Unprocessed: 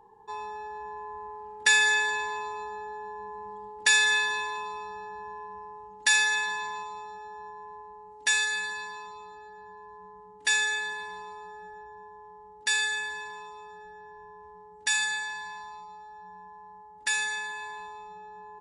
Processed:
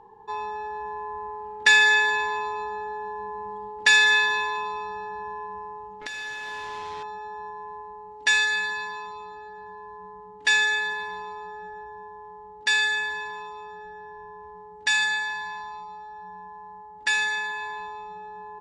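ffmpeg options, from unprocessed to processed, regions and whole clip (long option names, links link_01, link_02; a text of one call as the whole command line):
ffmpeg -i in.wav -filter_complex "[0:a]asettb=1/sr,asplit=3[link_01][link_02][link_03];[link_01]atrim=end=6.014[link_04];[link_02]atrim=start=6.01:end=7.03,asetpts=PTS-STARTPTS,afade=type=in:duration=0.004:curve=qsin,afade=type=out:start_time=1.016:duration=0.004:curve=qsin,equalizer=frequency=420:width=1.8:gain=6,acompressor=threshold=-36dB:ratio=16:attack=3.2:release=140:knee=1:detection=peak,acrusher=bits=6:mix=0:aa=0.5[link_05];[link_03]atrim=start=7.026[link_06];[link_04][link_05]acrossfade=duration=0.004:curve1=hsin:curve2=qsin[link_07];[link_07][link_06]acrossfade=duration=0.004:curve1=qsin:curve2=hsin,lowpass=4600,acontrast=39" out.wav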